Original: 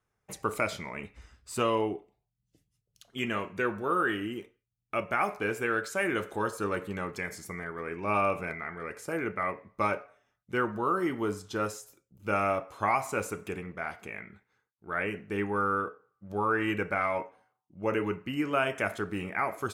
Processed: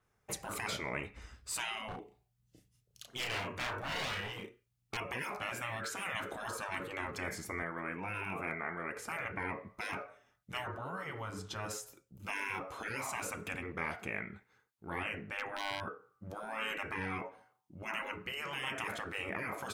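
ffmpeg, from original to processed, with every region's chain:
-filter_complex "[0:a]asettb=1/sr,asplit=3[a][b][c];[a]atrim=end=1.884[d];[b]atrim=start=1.88:end=4.97,asetpts=PTS-STARTPTS,afade=t=in:d=0.004:c=qsin,afade=t=out:st=3.086:d=0.004:c=qsin,asoftclip=type=hard:threshold=-32dB,asplit=2[e][f];[f]adelay=33,volume=-4.5dB[g];[e][g]amix=inputs=2:normalize=0,atrim=end_sample=136269[h];[c]atrim=start=4.966[i];[d][h]acrossfade=d=0.004:c1=hsin:c2=qsin[j];[j][i]acrossfade=d=0.004:c1=qsin:c2=hsin,asettb=1/sr,asplit=3[k][l][m];[k]atrim=end=7.624[n];[l]atrim=start=7.62:end=8.96,asetpts=PTS-STARTPTS,afade=t=in:d=0.004:c=qsin,afade=t=out:st=1.336:d=0.004:c=qsin,highpass=f=280:p=1,equalizer=f=4.7k:w=1.2:g=-12.5[o];[m]atrim=start=8.956[p];[n][o]acrossfade=d=0.004:c1=hsin:c2=qsin[q];[q][p]acrossfade=d=0.004:c1=qsin:c2=hsin,asettb=1/sr,asplit=3[r][s][t];[r]atrim=end=10.674[u];[s]atrim=start=10.67:end=11.71,asetpts=PTS-STARTPTS,afade=t=in:d=0.004:c=qsin,afade=t=out:st=1.036:d=0.004:c=qsin,acompressor=threshold=-36dB:ratio=2:attack=3.2:release=140:knee=1:detection=peak,highshelf=f=5.4k:g=-7[v];[t]atrim=start=11.706[w];[u][v]acrossfade=d=0.004:c1=hsin:c2=qsin[x];[x][w]acrossfade=d=0.004:c1=qsin:c2=hsin,asettb=1/sr,asplit=3[y][z][aa];[y]atrim=end=15.084[ab];[z]atrim=start=15.08:end=15.81,asetpts=PTS-STARTPTS,afade=t=in:d=0.004:c=qsin,afade=t=out:st=0.726:d=0.004:c=qsin,highshelf=f=4.2k:g=-7,aeval=exprs='0.0794*(abs(mod(val(0)/0.0794+3,4)-2)-1)':c=same[ac];[aa]atrim=start=15.806[ad];[ab][ac]acrossfade=d=0.004:c1=hsin:c2=qsin[ae];[ae][ad]acrossfade=d=0.004:c1=qsin:c2=hsin,afftfilt=real='re*lt(hypot(re,im),0.0501)':imag='im*lt(hypot(re,im),0.0501)':win_size=1024:overlap=0.75,adynamicequalizer=threshold=0.00178:dfrequency=4000:dqfactor=0.7:tfrequency=4000:tqfactor=0.7:attack=5:release=100:ratio=0.375:range=3:mode=cutabove:tftype=highshelf,volume=3.5dB"

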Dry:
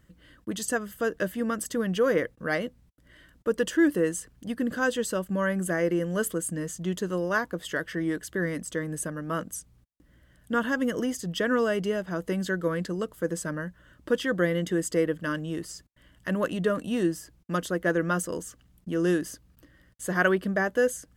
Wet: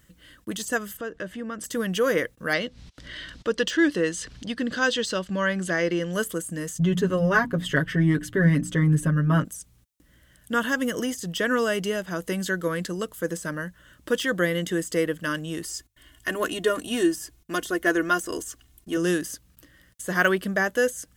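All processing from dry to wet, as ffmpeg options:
-filter_complex "[0:a]asettb=1/sr,asplit=3[a][b][c];[a]atrim=end=0.974[d];[b]atrim=start=0.97:end=1.64,asetpts=PTS-STARTPTS,afade=t=in:d=0.004:c=qsin,afade=t=out:st=0.666:d=0.004:c=qsin,lowpass=9.7k,aemphasis=mode=reproduction:type=75fm,acompressor=threshold=-35dB:ratio=2:attack=3.2:release=140:knee=1:detection=peak[e];[c]atrim=start=1.636[f];[d][e]acrossfade=d=0.004:c1=hsin:c2=qsin[g];[g][f]acrossfade=d=0.004:c1=qsin:c2=hsin,asettb=1/sr,asplit=3[h][i][j];[h]atrim=end=2.534[k];[i]atrim=start=2.53:end=6.13,asetpts=PTS-STARTPTS,afade=t=in:d=0.004:c=qsin,afade=t=out:st=3.596:d=0.004:c=qsin,lowpass=f=4.5k:t=q:w=1.9,acompressor=mode=upward:threshold=-31dB:ratio=2.5:attack=3.2:release=140:knee=2.83:detection=peak[l];[j]atrim=start=6.126[m];[k][l]acrossfade=d=0.004:c1=hsin:c2=qsin[n];[n][m]acrossfade=d=0.004:c1=qsin:c2=hsin,asettb=1/sr,asplit=3[o][p][q];[o]atrim=end=6.794[r];[p]atrim=start=6.79:end=9.45,asetpts=PTS-STARTPTS,afade=t=in:d=0.004:c=qsin,afade=t=out:st=2.656:d=0.004:c=qsin,bass=f=250:g=15,treble=f=4k:g=-13,bandreject=f=60:t=h:w=6,bandreject=f=120:t=h:w=6,bandreject=f=180:t=h:w=6,bandreject=f=240:t=h:w=6,bandreject=f=300:t=h:w=6,aecho=1:1:7.3:0.92,atrim=end_sample=117306[s];[q]atrim=start=9.446[t];[r][s]acrossfade=d=0.004:c1=hsin:c2=qsin[u];[u][t]acrossfade=d=0.004:c1=qsin:c2=hsin,asettb=1/sr,asplit=3[v][w][x];[v]atrim=end=15.644[y];[w]atrim=start=15.64:end=18.97,asetpts=PTS-STARTPTS,afade=t=in:d=0.004:c=qsin,afade=t=out:st=3.326:d=0.004:c=qsin,bandreject=f=50:t=h:w=6,bandreject=f=100:t=h:w=6,bandreject=f=150:t=h:w=6,bandreject=f=200:t=h:w=6,aecho=1:1:2.8:0.68,atrim=end_sample=146853[z];[x]atrim=start=18.966[aa];[y][z]acrossfade=d=0.004:c1=hsin:c2=qsin[ab];[ab][aa]acrossfade=d=0.004:c1=qsin:c2=hsin,highshelf=f=2.2k:g=11.5,deesser=0.55,equalizer=f=4.7k:w=6.9:g=-3"

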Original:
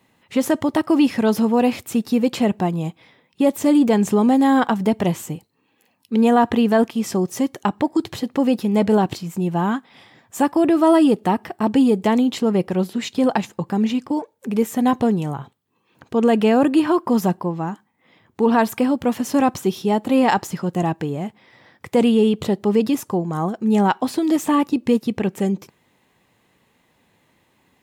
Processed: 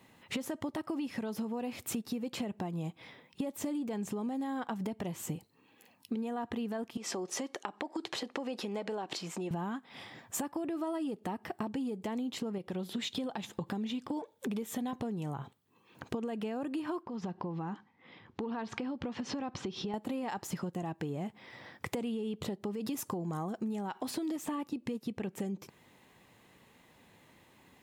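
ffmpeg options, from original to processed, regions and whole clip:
-filter_complex "[0:a]asettb=1/sr,asplit=3[a][b][c];[a]atrim=end=6.974[d];[b]atrim=start=6.97:end=9.51,asetpts=PTS-STARTPTS,afade=t=in:d=0.004:c=qsin,afade=t=out:st=2.536:d=0.004:c=qsin,acompressor=threshold=-23dB:ratio=6:attack=3.2:release=140:knee=1:detection=peak,highpass=390,lowpass=7k[e];[c]atrim=start=9.506[f];[d][e]acrossfade=d=0.004:c1=hsin:c2=qsin[g];[g][f]acrossfade=d=0.004:c1=qsin:c2=hsin,asettb=1/sr,asplit=3[h][i][j];[h]atrim=end=12.584[k];[i]atrim=start=12.58:end=14.93,asetpts=PTS-STARTPTS,afade=t=in:d=0.004:c=qsin,afade=t=out:st=2.346:d=0.004:c=qsin,equalizer=f=3.5k:w=4.5:g=9,acompressor=threshold=-31dB:ratio=1.5:attack=3.2:release=140:knee=1:detection=peak[l];[j]atrim=start=14.926[m];[k][l]acrossfade=d=0.004:c1=hsin:c2=qsin[n];[n][m]acrossfade=d=0.004:c1=qsin:c2=hsin,asettb=1/sr,asplit=3[o][p][q];[o]atrim=end=17.034[r];[p]atrim=start=17.03:end=19.94,asetpts=PTS-STARTPTS,afade=t=in:d=0.004:c=qsin,afade=t=out:st=2.906:d=0.004:c=qsin,lowpass=f=5.2k:w=0.5412,lowpass=f=5.2k:w=1.3066,bandreject=f=640:w=9.1,acompressor=threshold=-33dB:ratio=4:attack=3.2:release=140:knee=1:detection=peak[s];[q]atrim=start=19.936[t];[r][s]acrossfade=d=0.004:c1=hsin:c2=qsin[u];[u][t]acrossfade=d=0.004:c1=qsin:c2=hsin,asettb=1/sr,asplit=3[v][w][x];[v]atrim=end=22.734[y];[w]atrim=start=22.73:end=24.11,asetpts=PTS-STARTPTS,afade=t=in:d=0.004:c=qsin,afade=t=out:st=1.376:d=0.004:c=qsin,highshelf=f=5k:g=4.5,acompressor=threshold=-20dB:ratio=4:attack=3.2:release=140:knee=1:detection=peak[z];[x]atrim=start=24.106[aa];[y][z]acrossfade=d=0.004:c1=hsin:c2=qsin[ab];[ab][aa]acrossfade=d=0.004:c1=qsin:c2=hsin,alimiter=limit=-17dB:level=0:latency=1:release=345,acompressor=threshold=-33dB:ratio=10"

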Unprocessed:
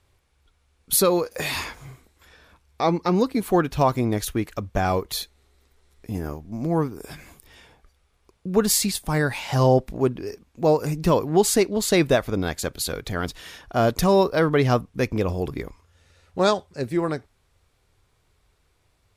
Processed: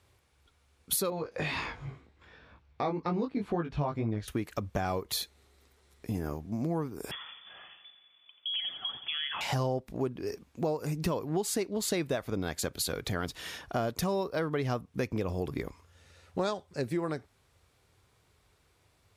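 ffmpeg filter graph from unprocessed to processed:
-filter_complex "[0:a]asettb=1/sr,asplit=3[a][b][c];[a]atrim=end=1.104[d];[b]atrim=start=1.1:end=4.28,asetpts=PTS-STARTPTS,afade=t=in:d=0.004:c=qsin,afade=t=out:st=3.176:d=0.004:c=qsin,lowpass=3.4k,flanger=delay=18:depth=2.5:speed=2,lowshelf=f=170:g=7[e];[c]atrim=start=4.276[f];[d][e]acrossfade=d=0.004:c1=hsin:c2=qsin[g];[g][f]acrossfade=d=0.004:c1=qsin:c2=hsin,asettb=1/sr,asplit=3[h][i][j];[h]atrim=end=7.114[k];[i]atrim=start=7.11:end=9.41,asetpts=PTS-STARTPTS,afade=t=in:d=0.004:c=qsin,afade=t=out:st=2.296:d=0.004:c=qsin,acompressor=threshold=-31dB:ratio=5:attack=3.2:release=140:knee=1:detection=peak,aecho=1:1:86|172|258|344|430|516|602:0.282|0.169|0.101|0.0609|0.0365|0.0219|0.0131,atrim=end_sample=101430,lowpass=f=3k:t=q:w=0.5098,lowpass=f=3k:t=q:w=0.6013,lowpass=f=3k:t=q:w=0.9,lowpass=f=3k:t=q:w=2.563,afreqshift=-3500[l];[j]atrim=start=9.406[m];[k][l]acrossfade=d=0.004:c1=hsin:c2=qsin[n];[n][m]acrossfade=d=0.004:c1=qsin:c2=hsin,highpass=68,acompressor=threshold=-29dB:ratio=5"

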